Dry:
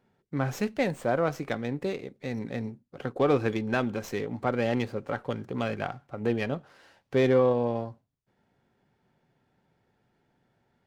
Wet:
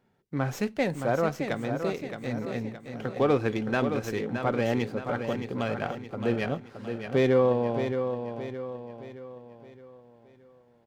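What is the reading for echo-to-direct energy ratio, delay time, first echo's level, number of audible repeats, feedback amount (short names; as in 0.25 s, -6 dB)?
-6.5 dB, 0.619 s, -7.5 dB, 4, 45%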